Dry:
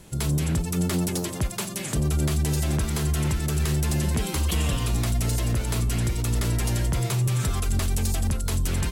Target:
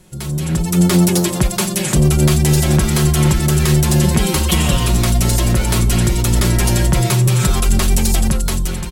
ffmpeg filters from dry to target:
-af "dynaudnorm=f=170:g=7:m=3.98,aecho=1:1:5.5:0.57,volume=0.891"

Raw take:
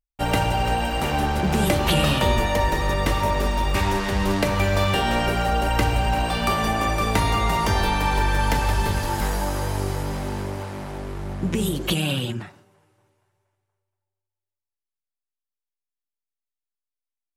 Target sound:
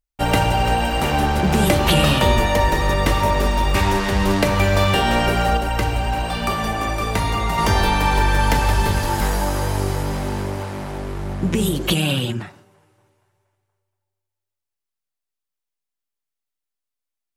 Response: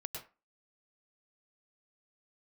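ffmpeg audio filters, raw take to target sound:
-filter_complex "[0:a]asettb=1/sr,asplit=3[s0][s1][s2];[s0]atrim=end=5.574[s3];[s1]atrim=start=5.57:end=7.58,asetpts=PTS-STARTPTS,afade=t=in:d=0.004:c=qsin,afade=t=out:st=2.006:d=0.004:c=qsin,flanger=delay=0.1:depth=3.4:regen=-68:speed=1.1:shape=triangular[s4];[s2]atrim=start=7.576[s5];[s3][s4]acrossfade=d=0.004:c1=hsin:c2=qsin[s6];[s6][s5]acrossfade=d=0.004:c1=qsin:c2=hsin,volume=1.58"

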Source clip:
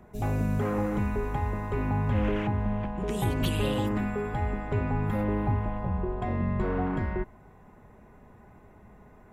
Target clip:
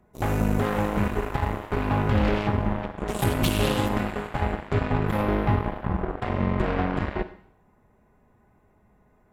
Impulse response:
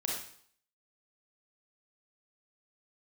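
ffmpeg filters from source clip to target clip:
-filter_complex "[0:a]aeval=exprs='0.158*(cos(1*acos(clip(val(0)/0.158,-1,1)))-cos(1*PI/2))+0.0282*(cos(7*acos(clip(val(0)/0.158,-1,1)))-cos(7*PI/2))':c=same,asplit=2[s0][s1];[s1]aemphasis=mode=production:type=cd[s2];[1:a]atrim=start_sample=2205,asetrate=38367,aresample=44100[s3];[s2][s3]afir=irnorm=-1:irlink=0,volume=0.178[s4];[s0][s4]amix=inputs=2:normalize=0,volume=1.33"

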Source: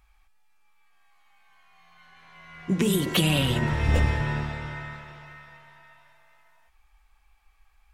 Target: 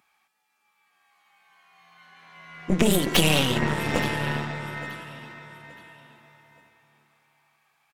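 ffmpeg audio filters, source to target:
-af "highpass=f=150:w=0.5412,highpass=f=150:w=1.3066,aecho=1:1:873|1746|2619:0.168|0.0487|0.0141,aeval=exprs='0.316*(cos(1*acos(clip(val(0)/0.316,-1,1)))-cos(1*PI/2))+0.0891*(cos(4*acos(clip(val(0)/0.316,-1,1)))-cos(4*PI/2))':c=same,volume=1.26"

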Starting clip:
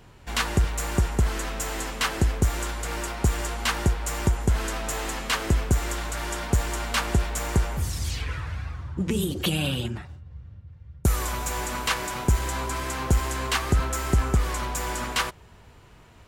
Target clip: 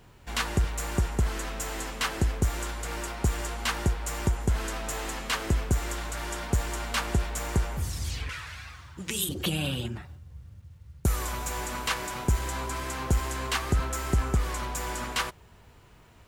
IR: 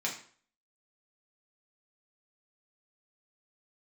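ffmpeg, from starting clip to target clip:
-filter_complex "[0:a]asettb=1/sr,asplit=3[s0][s1][s2];[s0]atrim=end=8.294[s3];[s1]atrim=start=8.29:end=9.29,asetpts=PTS-STARTPTS,afade=t=in:d=0.004:c=qsin,afade=t=out:st=0.996:d=0.004:c=qsin,tiltshelf=f=1100:g=-10[s4];[s2]atrim=start=9.286[s5];[s3][s4]acrossfade=d=0.004:c1=hsin:c2=qsin[s6];[s6][s5]acrossfade=d=0.004:c1=qsin:c2=hsin,acrusher=bits=10:mix=0:aa=0.000001,volume=0.668"

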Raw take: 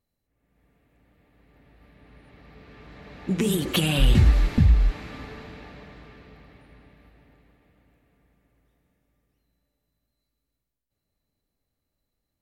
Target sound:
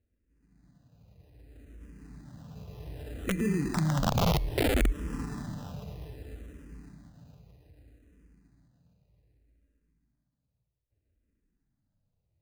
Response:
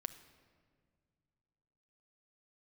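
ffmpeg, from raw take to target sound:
-filter_complex "[0:a]adynamicsmooth=sensitivity=4.5:basefreq=910,alimiter=limit=0.126:level=0:latency=1:release=44,asplit=2[s0][s1];[s1]lowpass=4000[s2];[1:a]atrim=start_sample=2205,lowshelf=f=150:g=-8[s3];[s2][s3]afir=irnorm=-1:irlink=0,volume=0.596[s4];[s0][s4]amix=inputs=2:normalize=0,acompressor=threshold=0.0316:ratio=3,acrusher=samples=20:mix=1:aa=0.000001,equalizer=f=81:w=0.42:g=9.5,aeval=exprs='(mod(7.5*val(0)+1,2)-1)/7.5':c=same,asplit=2[s5][s6];[s6]afreqshift=-0.63[s7];[s5][s7]amix=inputs=2:normalize=1"

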